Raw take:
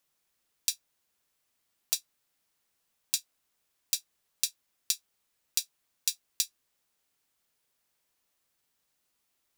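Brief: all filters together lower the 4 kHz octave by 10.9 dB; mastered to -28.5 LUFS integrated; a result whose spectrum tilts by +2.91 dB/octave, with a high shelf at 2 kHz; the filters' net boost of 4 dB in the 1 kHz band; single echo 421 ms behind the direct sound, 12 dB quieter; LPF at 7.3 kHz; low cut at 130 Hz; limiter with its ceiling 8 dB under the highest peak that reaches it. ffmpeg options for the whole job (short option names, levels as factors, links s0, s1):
-af "highpass=130,lowpass=7300,equalizer=f=1000:t=o:g=7.5,highshelf=f=2000:g=-7,equalizer=f=4000:t=o:g=-6,alimiter=level_in=1.12:limit=0.0631:level=0:latency=1,volume=0.891,aecho=1:1:421:0.251,volume=16.8"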